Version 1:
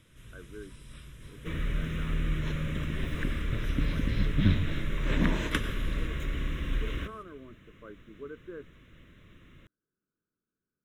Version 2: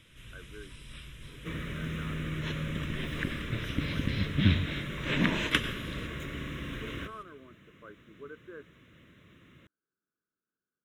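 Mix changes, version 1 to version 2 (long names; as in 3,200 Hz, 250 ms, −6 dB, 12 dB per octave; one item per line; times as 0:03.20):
speech: add spectral tilt +3 dB per octave
first sound: add high-pass filter 100 Hz 12 dB per octave
second sound: add parametric band 2,800 Hz +8 dB 1.3 octaves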